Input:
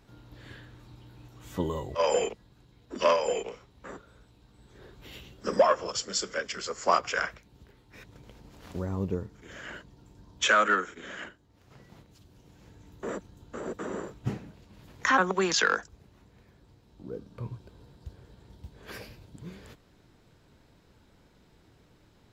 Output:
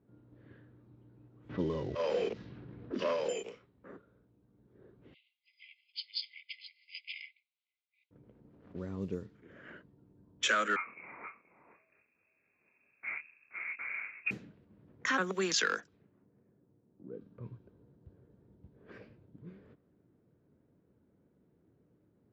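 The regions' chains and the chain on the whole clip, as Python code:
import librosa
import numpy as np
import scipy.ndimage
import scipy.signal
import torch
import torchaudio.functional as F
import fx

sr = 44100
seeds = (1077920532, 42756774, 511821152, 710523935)

y = fx.chain(x, sr, fx.cvsd(bps=32000),
    fx.lowpass(hz=1300.0, slope=6),
    fx.env_flatten(amount_pct=50), at=(1.49, 3.29))
y = fx.chain(y, sr, fx.brickwall_bandpass(low_hz=2000.0, high_hz=5100.0),
    fx.high_shelf(hz=3600.0, db=5.5), at=(5.14, 8.11))
y = fx.chain(y, sr, fx.doubler(ms=26.0, db=-6),
    fx.echo_single(ms=477, db=-9.5),
    fx.freq_invert(carrier_hz=2600), at=(10.76, 14.31))
y = fx.chain(y, sr, fx.bandpass_edges(low_hz=110.0, high_hz=4900.0),
    fx.high_shelf(hz=3700.0, db=-11.0), at=(15.8, 17.21))
y = scipy.signal.sosfilt(scipy.signal.bessel(2, 160.0, 'highpass', norm='mag', fs=sr, output='sos'), y)
y = fx.env_lowpass(y, sr, base_hz=730.0, full_db=-26.5)
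y = fx.peak_eq(y, sr, hz=850.0, db=-10.5, octaves=1.1)
y = y * 10.0 ** (-3.5 / 20.0)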